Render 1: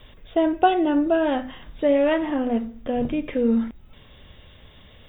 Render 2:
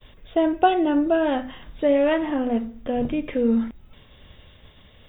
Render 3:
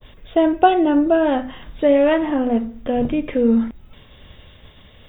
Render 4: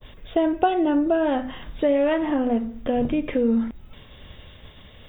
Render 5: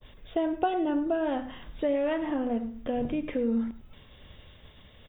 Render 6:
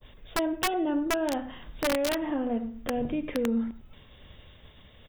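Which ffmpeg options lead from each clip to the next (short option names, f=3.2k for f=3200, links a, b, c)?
-af "agate=range=-33dB:threshold=-45dB:ratio=3:detection=peak"
-af "adynamicequalizer=threshold=0.0126:dfrequency=1600:dqfactor=0.7:tfrequency=1600:tqfactor=0.7:attack=5:release=100:ratio=0.375:range=2:mode=cutabove:tftype=highshelf,volume=4.5dB"
-af "acompressor=threshold=-21dB:ratio=2"
-filter_complex "[0:a]asplit=2[a][b];[b]adelay=105,volume=-15dB,highshelf=f=4k:g=-2.36[c];[a][c]amix=inputs=2:normalize=0,volume=-7dB"
-af "aeval=exprs='(mod(9.44*val(0)+1,2)-1)/9.44':c=same"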